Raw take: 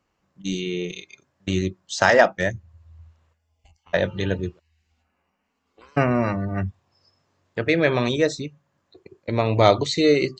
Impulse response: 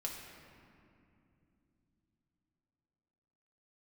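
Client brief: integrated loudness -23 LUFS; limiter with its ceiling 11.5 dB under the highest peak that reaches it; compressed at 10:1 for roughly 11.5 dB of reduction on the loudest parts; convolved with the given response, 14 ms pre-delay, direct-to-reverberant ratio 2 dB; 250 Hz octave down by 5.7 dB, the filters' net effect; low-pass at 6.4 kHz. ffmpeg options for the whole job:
-filter_complex "[0:a]lowpass=6400,equalizer=f=250:t=o:g=-8,acompressor=threshold=0.0794:ratio=10,alimiter=limit=0.141:level=0:latency=1,asplit=2[s0][s1];[1:a]atrim=start_sample=2205,adelay=14[s2];[s1][s2]afir=irnorm=-1:irlink=0,volume=0.794[s3];[s0][s3]amix=inputs=2:normalize=0,volume=2.24"

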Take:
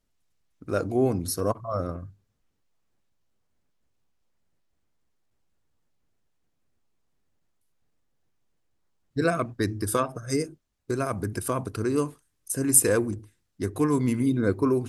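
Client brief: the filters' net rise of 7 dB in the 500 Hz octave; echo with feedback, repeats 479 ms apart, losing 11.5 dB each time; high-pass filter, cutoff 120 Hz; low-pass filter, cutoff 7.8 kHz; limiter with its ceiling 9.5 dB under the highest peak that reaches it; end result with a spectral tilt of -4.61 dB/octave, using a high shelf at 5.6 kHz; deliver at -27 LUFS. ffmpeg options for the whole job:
-af "highpass=120,lowpass=7800,equalizer=f=500:t=o:g=8.5,highshelf=f=5600:g=8,alimiter=limit=0.266:level=0:latency=1,aecho=1:1:479|958|1437:0.266|0.0718|0.0194,volume=0.75"

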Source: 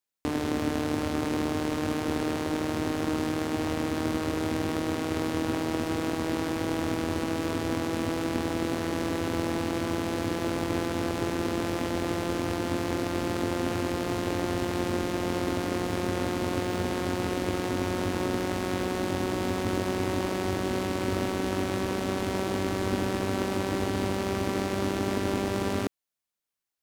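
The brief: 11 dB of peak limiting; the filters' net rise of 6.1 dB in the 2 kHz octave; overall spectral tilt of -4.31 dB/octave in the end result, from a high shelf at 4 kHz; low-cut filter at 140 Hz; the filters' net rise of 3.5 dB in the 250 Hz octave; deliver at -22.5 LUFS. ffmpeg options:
-af "highpass=140,equalizer=f=250:t=o:g=5,equalizer=f=2000:t=o:g=6,highshelf=f=4000:g=7,volume=3.16,alimiter=limit=0.299:level=0:latency=1"

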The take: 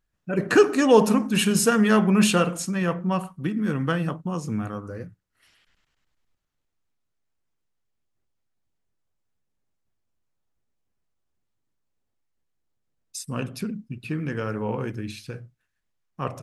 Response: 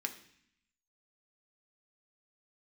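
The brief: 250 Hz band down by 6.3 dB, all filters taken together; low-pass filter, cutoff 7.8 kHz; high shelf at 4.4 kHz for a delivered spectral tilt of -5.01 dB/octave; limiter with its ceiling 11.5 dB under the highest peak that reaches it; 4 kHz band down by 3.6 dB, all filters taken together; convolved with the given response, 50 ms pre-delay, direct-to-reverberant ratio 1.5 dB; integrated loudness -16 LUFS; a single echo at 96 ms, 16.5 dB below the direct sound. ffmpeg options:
-filter_complex "[0:a]lowpass=7800,equalizer=f=250:t=o:g=-8.5,equalizer=f=4000:t=o:g=-3,highshelf=f=4400:g=-4,alimiter=limit=0.141:level=0:latency=1,aecho=1:1:96:0.15,asplit=2[s0][s1];[1:a]atrim=start_sample=2205,adelay=50[s2];[s1][s2]afir=irnorm=-1:irlink=0,volume=0.75[s3];[s0][s3]amix=inputs=2:normalize=0,volume=3.98"

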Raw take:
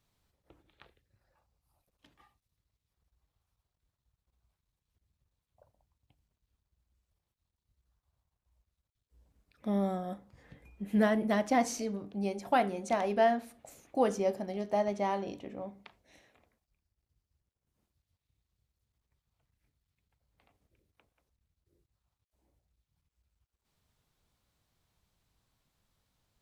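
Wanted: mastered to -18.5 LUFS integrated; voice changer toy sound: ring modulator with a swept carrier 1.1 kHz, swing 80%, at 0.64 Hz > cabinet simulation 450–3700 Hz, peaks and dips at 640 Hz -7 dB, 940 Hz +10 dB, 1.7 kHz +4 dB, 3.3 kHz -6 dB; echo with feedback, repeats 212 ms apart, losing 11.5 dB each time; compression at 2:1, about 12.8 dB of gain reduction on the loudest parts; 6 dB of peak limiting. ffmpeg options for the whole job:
-af "acompressor=threshold=0.00501:ratio=2,alimiter=level_in=2.82:limit=0.0631:level=0:latency=1,volume=0.355,aecho=1:1:212|424|636:0.266|0.0718|0.0194,aeval=exprs='val(0)*sin(2*PI*1100*n/s+1100*0.8/0.64*sin(2*PI*0.64*n/s))':c=same,highpass=450,equalizer=f=640:t=q:w=4:g=-7,equalizer=f=940:t=q:w=4:g=10,equalizer=f=1700:t=q:w=4:g=4,equalizer=f=3300:t=q:w=4:g=-6,lowpass=f=3700:w=0.5412,lowpass=f=3700:w=1.3066,volume=18.8"

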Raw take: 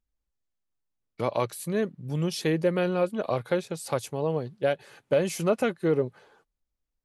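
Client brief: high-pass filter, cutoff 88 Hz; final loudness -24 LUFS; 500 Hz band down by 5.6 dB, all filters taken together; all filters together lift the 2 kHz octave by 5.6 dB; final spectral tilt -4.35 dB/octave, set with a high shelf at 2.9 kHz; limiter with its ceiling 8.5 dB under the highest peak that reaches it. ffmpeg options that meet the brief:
-af "highpass=88,equalizer=f=500:t=o:g=-7,equalizer=f=2000:t=o:g=6,highshelf=f=2900:g=4.5,volume=2.66,alimiter=limit=0.282:level=0:latency=1"

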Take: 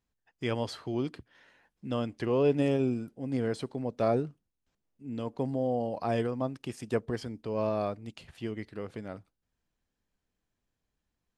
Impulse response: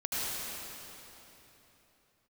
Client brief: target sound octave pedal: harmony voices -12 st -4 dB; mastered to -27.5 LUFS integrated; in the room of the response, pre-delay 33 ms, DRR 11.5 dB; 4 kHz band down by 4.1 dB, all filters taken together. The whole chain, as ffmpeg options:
-filter_complex "[0:a]equalizer=f=4000:t=o:g=-5.5,asplit=2[s0][s1];[1:a]atrim=start_sample=2205,adelay=33[s2];[s1][s2]afir=irnorm=-1:irlink=0,volume=0.112[s3];[s0][s3]amix=inputs=2:normalize=0,asplit=2[s4][s5];[s5]asetrate=22050,aresample=44100,atempo=2,volume=0.631[s6];[s4][s6]amix=inputs=2:normalize=0,volume=1.5"

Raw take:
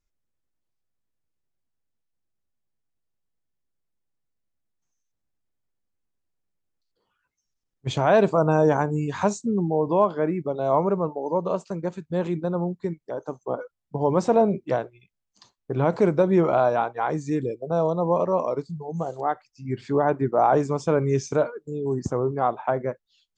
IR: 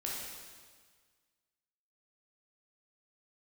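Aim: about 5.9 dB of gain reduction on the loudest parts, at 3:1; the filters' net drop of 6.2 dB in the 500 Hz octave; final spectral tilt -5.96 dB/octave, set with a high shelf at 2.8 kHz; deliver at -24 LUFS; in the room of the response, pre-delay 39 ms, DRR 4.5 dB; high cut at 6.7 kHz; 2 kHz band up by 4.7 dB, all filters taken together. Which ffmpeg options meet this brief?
-filter_complex "[0:a]lowpass=6700,equalizer=f=500:t=o:g=-8.5,equalizer=f=2000:t=o:g=6.5,highshelf=f=2800:g=3,acompressor=threshold=0.0562:ratio=3,asplit=2[s0][s1];[1:a]atrim=start_sample=2205,adelay=39[s2];[s1][s2]afir=irnorm=-1:irlink=0,volume=0.473[s3];[s0][s3]amix=inputs=2:normalize=0,volume=1.88"

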